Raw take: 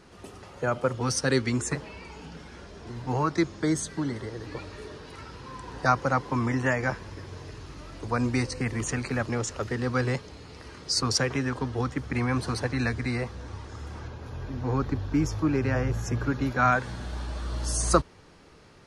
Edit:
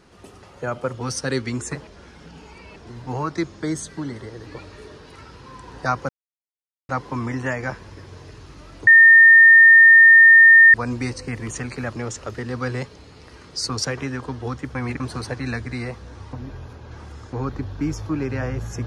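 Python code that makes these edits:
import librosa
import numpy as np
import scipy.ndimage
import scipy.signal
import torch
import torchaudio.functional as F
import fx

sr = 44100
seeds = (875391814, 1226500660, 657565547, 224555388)

y = fx.edit(x, sr, fx.reverse_span(start_s=1.87, length_s=0.89),
    fx.insert_silence(at_s=6.09, length_s=0.8),
    fx.insert_tone(at_s=8.07, length_s=1.87, hz=1820.0, db=-6.0),
    fx.reverse_span(start_s=12.08, length_s=0.25),
    fx.reverse_span(start_s=13.66, length_s=1.0), tone=tone)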